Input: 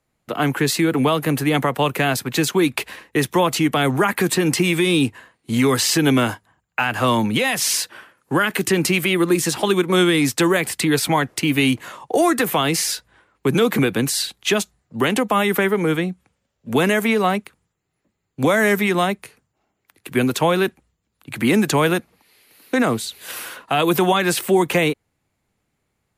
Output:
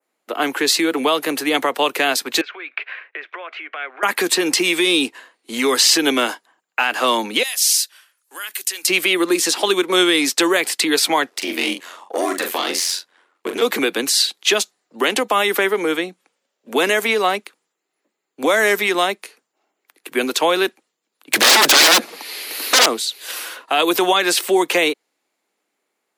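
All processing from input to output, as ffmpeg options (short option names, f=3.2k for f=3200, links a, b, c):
-filter_complex "[0:a]asettb=1/sr,asplit=3[a][b][c];[a]atrim=end=2.414[d];[b]atrim=start=2.41:end=4.03,asetpts=PTS-STARTPTS,afade=t=in:d=0.004:c=qsin,afade=t=out:st=1.616:d=0.004:c=qsin,acompressor=threshold=-25dB:ratio=6:attack=3.2:release=140:knee=1:detection=peak,highpass=f=490:w=0.5412,highpass=f=490:w=1.3066,equalizer=f=490:t=q:w=4:g=-6,equalizer=f=890:t=q:w=4:g=-9,equalizer=f=1.5k:t=q:w=4:g=7,equalizer=f=2.3k:t=q:w=4:g=7,lowpass=f=2.7k:w=0.5412,lowpass=f=2.7k:w=1.3066[e];[c]atrim=start=4.026[f];[d][e]acrossfade=d=0.004:c1=hsin:c2=qsin[g];[g][f]acrossfade=d=0.004:c1=qsin:c2=hsin,asettb=1/sr,asplit=3[h][i][j];[h]atrim=end=7.434[k];[i]atrim=start=7.43:end=8.88,asetpts=PTS-STARTPTS,afade=t=in:d=0.004:c=qsin,afade=t=out:st=1.446:d=0.004:c=qsin,aderivative,bandreject=f=60:t=h:w=6,bandreject=f=120:t=h:w=6,bandreject=f=180:t=h:w=6,bandreject=f=240:t=h:w=6,bandreject=f=300:t=h:w=6[l];[j]atrim=start=8.876[m];[k][l]acrossfade=d=0.004:c1=hsin:c2=qsin[n];[n][m]acrossfade=d=0.004:c1=qsin:c2=hsin,asettb=1/sr,asplit=3[o][p][q];[o]atrim=end=11.294[r];[p]atrim=start=11.29:end=13.62,asetpts=PTS-STARTPTS,afade=t=in:d=0.004:c=qsin,afade=t=out:st=2.326:d=0.004:c=qsin,aeval=exprs='(tanh(3.98*val(0)+0.45)-tanh(0.45))/3.98':c=same,aeval=exprs='val(0)*sin(2*PI*44*n/s)':c=same,asplit=2[s][t];[t]adelay=42,volume=-6dB[u];[s][u]amix=inputs=2:normalize=0,atrim=end_sample=102753[v];[q]atrim=start=13.616[w];[r][v]acrossfade=d=0.004:c1=hsin:c2=qsin[x];[x][w]acrossfade=d=0.004:c1=qsin:c2=hsin,asettb=1/sr,asplit=3[y][z][aa];[y]atrim=end=21.334[ab];[z]atrim=start=21.33:end=22.86,asetpts=PTS-STARTPTS,afade=t=in:d=0.004:c=qsin,afade=t=out:st=1.526:d=0.004:c=qsin,aeval=exprs='0.473*sin(PI/2*7.94*val(0)/0.473)':c=same,acompressor=threshold=-15dB:ratio=2.5:attack=3.2:release=140:knee=1:detection=peak[ac];[aa]atrim=start=22.856[ad];[ab][ac]acrossfade=d=0.004:c1=hsin:c2=qsin[ae];[ae][ad]acrossfade=d=0.004:c1=qsin:c2=hsin,highpass=f=300:w=0.5412,highpass=f=300:w=1.3066,adynamicequalizer=threshold=0.0141:dfrequency=4600:dqfactor=0.9:tfrequency=4600:tqfactor=0.9:attack=5:release=100:ratio=0.375:range=3.5:mode=boostabove:tftype=bell,volume=1dB"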